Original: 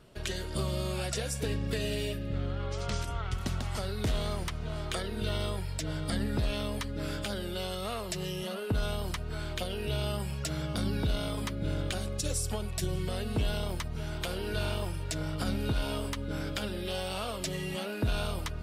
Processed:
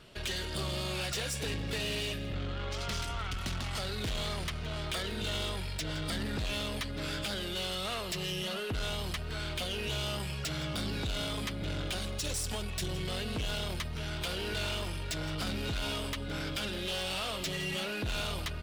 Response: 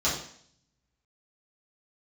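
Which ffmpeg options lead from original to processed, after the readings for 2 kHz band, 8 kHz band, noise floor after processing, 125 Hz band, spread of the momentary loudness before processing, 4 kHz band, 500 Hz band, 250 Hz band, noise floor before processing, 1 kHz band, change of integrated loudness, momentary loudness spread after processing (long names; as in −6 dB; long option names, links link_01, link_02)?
+2.5 dB, −0.5 dB, −38 dBFS, −4.0 dB, 4 LU, +4.0 dB, −3.0 dB, −3.5 dB, −37 dBFS, −1.0 dB, −1.0 dB, 3 LU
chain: -filter_complex "[0:a]equalizer=frequency=3100:width=0.57:gain=9,asoftclip=type=tanh:threshold=-30.5dB,asplit=2[link_01][link_02];[link_02]aecho=0:1:167:0.158[link_03];[link_01][link_03]amix=inputs=2:normalize=0"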